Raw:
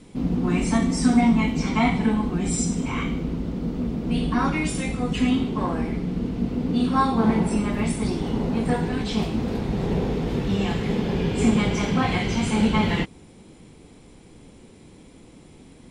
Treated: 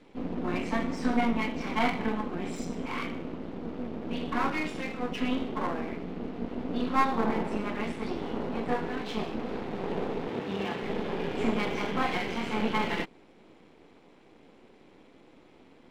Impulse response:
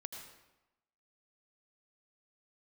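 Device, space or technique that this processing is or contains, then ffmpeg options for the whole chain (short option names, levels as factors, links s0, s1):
crystal radio: -filter_complex "[0:a]highpass=310,lowpass=2900,aeval=exprs='if(lt(val(0),0),0.251*val(0),val(0))':c=same,asettb=1/sr,asplit=3[s0][s1][s2];[s0]atrim=end=10.284[s3];[s1]atrim=start=10.28:end=10.83,asetpts=PTS-STARTPTS,afade=t=in:d=0.004:c=qsin,afade=t=out:st=0.546:d=0.004:c=qsin,highpass=78[s4];[s2]atrim=start=10.826[s5];[s3][s4]acrossfade=d=0.004:c1=hsin:c2=qsin[s6];[s6][s5]acrossfade=d=0.004:c1=qsin:c2=hsin"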